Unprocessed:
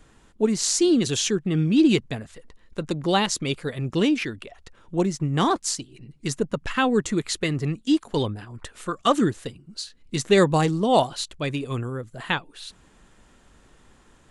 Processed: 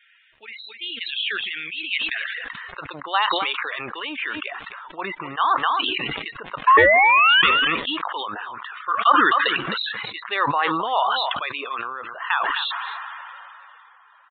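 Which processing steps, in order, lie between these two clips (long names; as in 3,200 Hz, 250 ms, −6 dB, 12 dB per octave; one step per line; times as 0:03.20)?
in parallel at +1 dB: downward compressor, threshold −34 dBFS, peak gain reduction 19.5 dB
on the sum: high-pass filter sweep 2,200 Hz → 1,100 Hz, 0:01.89–0:02.86
0:06.67–0:07.42: sound drawn into the spectrogram rise 1,000–2,400 Hz −9 dBFS
surface crackle 170 per second −42 dBFS
spectral peaks only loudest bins 64
0:06.77–0:07.67: ring modulation 700 Hz
on a send: single-tap delay 261 ms −22.5 dB
on the sum: downsampling to 8,000 Hz
level that may fall only so fast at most 20 dB per second
level −2.5 dB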